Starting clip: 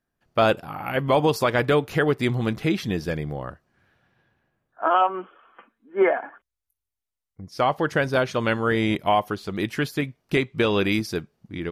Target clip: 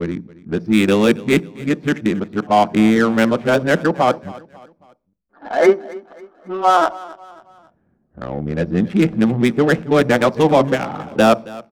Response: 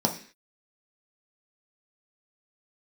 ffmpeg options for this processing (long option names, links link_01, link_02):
-filter_complex "[0:a]areverse,adynamicsmooth=sensitivity=2.5:basefreq=680,aecho=1:1:272|544|816:0.1|0.042|0.0176,asplit=2[link_01][link_02];[1:a]atrim=start_sample=2205,lowshelf=frequency=320:gain=9.5[link_03];[link_02][link_03]afir=irnorm=-1:irlink=0,volume=-26.5dB[link_04];[link_01][link_04]amix=inputs=2:normalize=0,volume=5dB"